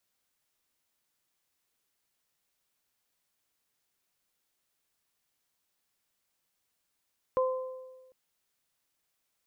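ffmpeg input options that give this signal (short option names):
-f lavfi -i "aevalsrc='0.0708*pow(10,-3*t/1.32)*sin(2*PI*516*t)+0.0376*pow(10,-3*t/0.9)*sin(2*PI*1032*t)':d=0.75:s=44100"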